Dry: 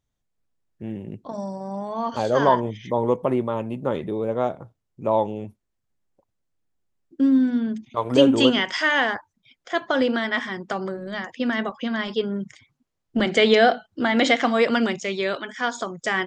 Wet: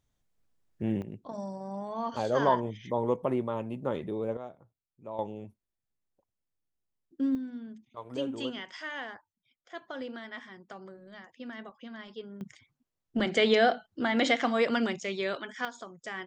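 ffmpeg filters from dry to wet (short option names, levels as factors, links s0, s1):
-af "asetnsamples=n=441:p=0,asendcmd='1.02 volume volume -7dB;4.37 volume volume -19dB;5.19 volume volume -10dB;7.35 volume volume -18dB;12.41 volume volume -7dB;15.65 volume volume -15dB',volume=1.26"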